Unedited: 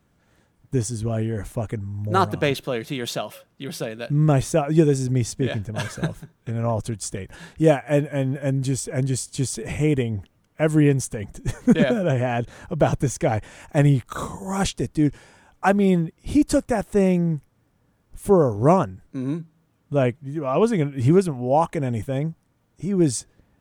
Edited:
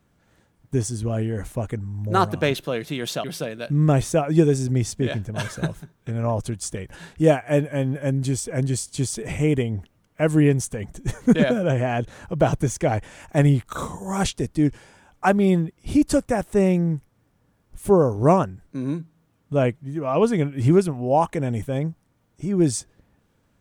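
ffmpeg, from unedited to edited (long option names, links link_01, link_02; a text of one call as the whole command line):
ffmpeg -i in.wav -filter_complex "[0:a]asplit=2[link_01][link_02];[link_01]atrim=end=3.242[link_03];[link_02]atrim=start=3.638[link_04];[link_03][link_04]acrossfade=duration=0.004:curve1=hsin:curve2=hsin" out.wav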